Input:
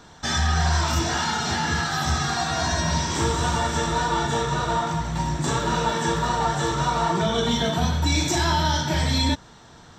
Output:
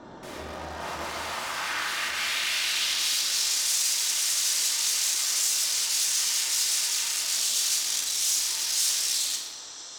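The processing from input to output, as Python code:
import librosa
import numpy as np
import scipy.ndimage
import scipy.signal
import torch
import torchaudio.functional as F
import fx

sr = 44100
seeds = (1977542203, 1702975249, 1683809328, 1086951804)

y = fx.over_compress(x, sr, threshold_db=-29.0, ratio=-1.0)
y = (np.mod(10.0 ** (26.0 / 20.0) * y + 1.0, 2.0) - 1.0) / 10.0 ** (26.0 / 20.0)
y = fx.high_shelf(y, sr, hz=2900.0, db=10.5)
y = fx.filter_sweep_bandpass(y, sr, from_hz=430.0, to_hz=6300.0, start_s=0.25, end_s=3.64, q=1.3)
y = fx.low_shelf(y, sr, hz=61.0, db=11.0)
y = fx.room_shoebox(y, sr, seeds[0], volume_m3=1400.0, walls='mixed', distance_m=2.6)
y = fx.dmg_noise_band(y, sr, seeds[1], low_hz=270.0, high_hz=1400.0, level_db=-56.0)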